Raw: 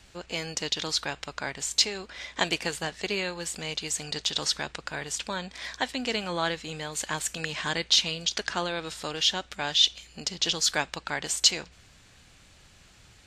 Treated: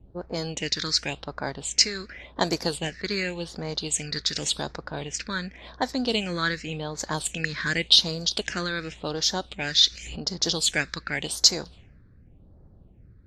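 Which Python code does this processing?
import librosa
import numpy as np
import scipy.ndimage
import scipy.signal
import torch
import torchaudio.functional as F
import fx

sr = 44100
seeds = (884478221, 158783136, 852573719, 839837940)

y = fx.env_lowpass(x, sr, base_hz=430.0, full_db=-26.0)
y = fx.phaser_stages(y, sr, stages=6, low_hz=750.0, high_hz=2800.0, hz=0.89, feedback_pct=25)
y = fx.pre_swell(y, sr, db_per_s=43.0, at=(9.78, 10.26))
y = F.gain(torch.from_numpy(y), 5.5).numpy()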